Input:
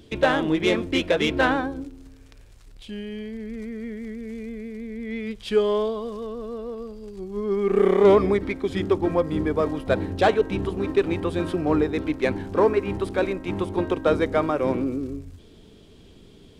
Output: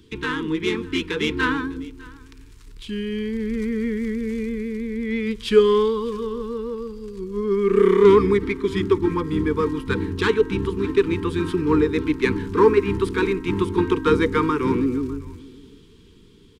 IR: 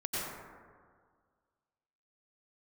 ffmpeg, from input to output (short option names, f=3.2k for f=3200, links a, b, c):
-filter_complex "[0:a]dynaudnorm=f=340:g=9:m=12.5dB,asuperstop=centerf=650:order=20:qfactor=1.7,asplit=2[a][b];[b]aecho=0:1:602:0.075[c];[a][c]amix=inputs=2:normalize=0,volume=-2dB"